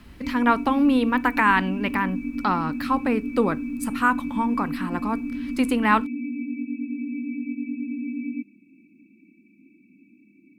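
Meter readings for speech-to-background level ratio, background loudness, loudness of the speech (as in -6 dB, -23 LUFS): 7.0 dB, -30.5 LUFS, -23.5 LUFS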